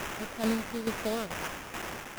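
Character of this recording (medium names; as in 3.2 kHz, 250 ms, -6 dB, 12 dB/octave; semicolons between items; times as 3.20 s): a quantiser's noise floor 6-bit, dither triangular; tremolo saw down 2.3 Hz, depth 70%; aliases and images of a low sample rate 4.3 kHz, jitter 20%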